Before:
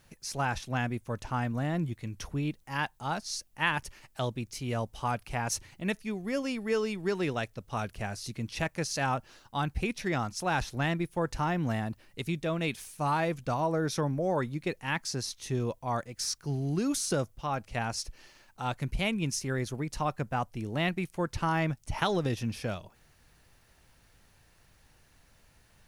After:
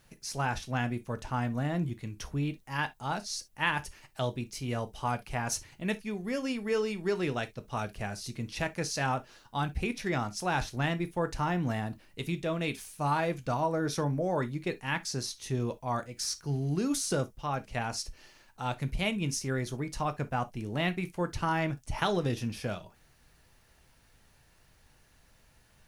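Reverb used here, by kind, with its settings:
reverb whose tail is shaped and stops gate 90 ms falling, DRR 9.5 dB
level −1 dB

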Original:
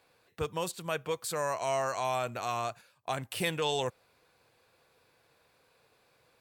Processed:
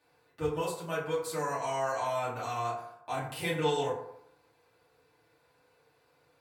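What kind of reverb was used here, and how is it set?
feedback delay network reverb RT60 0.77 s, low-frequency decay 0.85×, high-frequency decay 0.4×, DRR −9.5 dB
level −10.5 dB

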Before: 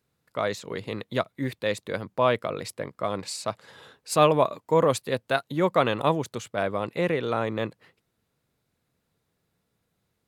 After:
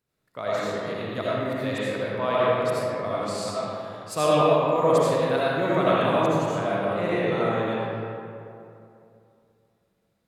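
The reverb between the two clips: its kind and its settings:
comb and all-pass reverb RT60 2.7 s, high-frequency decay 0.5×, pre-delay 40 ms, DRR −8.5 dB
level −7 dB

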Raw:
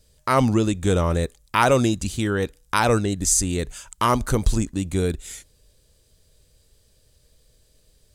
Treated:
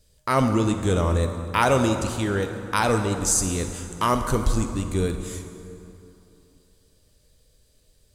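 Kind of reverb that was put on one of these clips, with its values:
dense smooth reverb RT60 2.9 s, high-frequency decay 0.6×, DRR 6 dB
level −2.5 dB

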